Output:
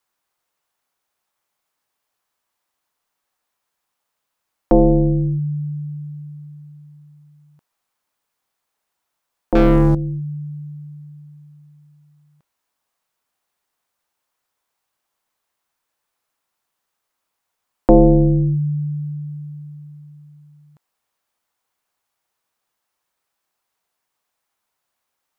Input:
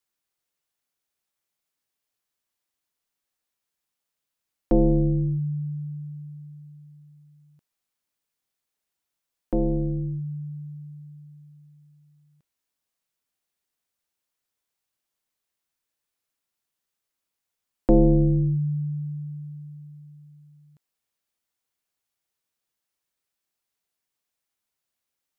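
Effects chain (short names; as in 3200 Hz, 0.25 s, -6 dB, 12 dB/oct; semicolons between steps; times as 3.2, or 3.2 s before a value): bell 960 Hz +9.5 dB 1.7 oct; 9.55–9.95 sample leveller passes 3; gain +4.5 dB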